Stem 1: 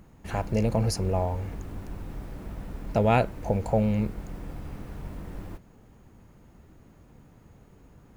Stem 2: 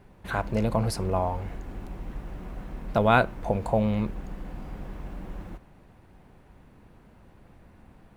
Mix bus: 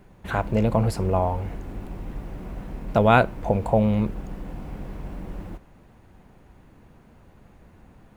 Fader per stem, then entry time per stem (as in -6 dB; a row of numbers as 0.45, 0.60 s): -6.0, +1.0 dB; 0.00, 0.00 s